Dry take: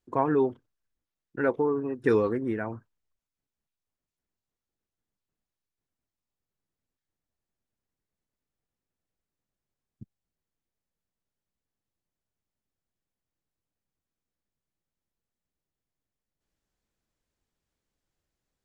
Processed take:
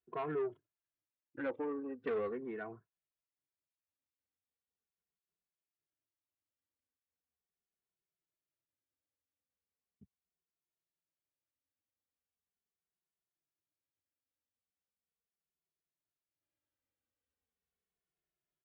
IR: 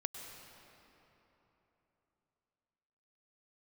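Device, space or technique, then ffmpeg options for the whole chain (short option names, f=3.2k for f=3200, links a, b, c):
barber-pole flanger into a guitar amplifier: -filter_complex "[0:a]asplit=2[a][b];[b]adelay=2.3,afreqshift=-0.39[c];[a][c]amix=inputs=2:normalize=1,asoftclip=type=tanh:threshold=-24.5dB,highpass=78,equalizer=f=130:t=q:w=4:g=-7,equalizer=f=220:t=q:w=4:g=-7,equalizer=f=920:t=q:w=4:g=-4,lowpass=f=3.4k:w=0.5412,lowpass=f=3.4k:w=1.3066,volume=-6dB"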